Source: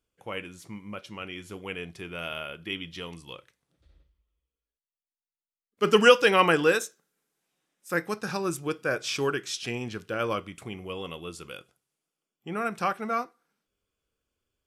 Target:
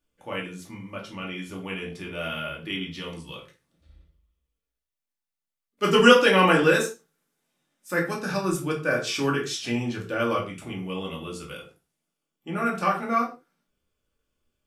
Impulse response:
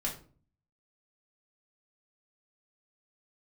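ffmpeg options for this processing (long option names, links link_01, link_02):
-filter_complex "[1:a]atrim=start_sample=2205,afade=type=out:start_time=0.22:duration=0.01,atrim=end_sample=10143[link_01];[0:a][link_01]afir=irnorm=-1:irlink=0,asplit=3[link_02][link_03][link_04];[link_02]afade=type=out:start_time=3.32:duration=0.02[link_05];[link_03]adynamicequalizer=threshold=0.00708:dfrequency=3000:dqfactor=0.7:tfrequency=3000:tqfactor=0.7:attack=5:release=100:ratio=0.375:range=3.5:mode=boostabove:tftype=highshelf,afade=type=in:start_time=3.32:duration=0.02,afade=type=out:start_time=5.9:duration=0.02[link_06];[link_04]afade=type=in:start_time=5.9:duration=0.02[link_07];[link_05][link_06][link_07]amix=inputs=3:normalize=0"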